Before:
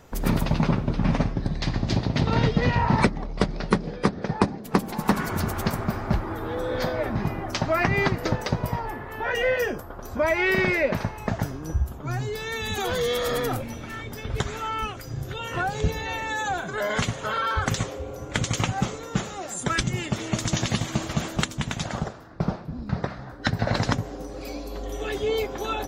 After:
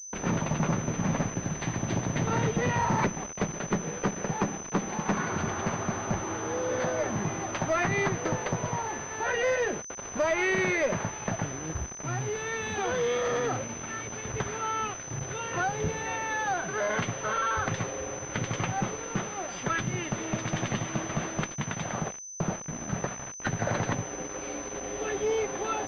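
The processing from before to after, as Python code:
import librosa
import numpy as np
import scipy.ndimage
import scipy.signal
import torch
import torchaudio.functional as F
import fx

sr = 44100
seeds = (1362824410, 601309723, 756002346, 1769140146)

y = scipy.signal.sosfilt(scipy.signal.butter(2, 130.0, 'highpass', fs=sr, output='sos'), x)
y = fx.peak_eq(y, sr, hz=260.0, db=-4.0, octaves=0.44)
y = fx.quant_dither(y, sr, seeds[0], bits=6, dither='none')
y = fx.tube_stage(y, sr, drive_db=20.0, bias=0.3)
y = fx.pwm(y, sr, carrier_hz=6100.0)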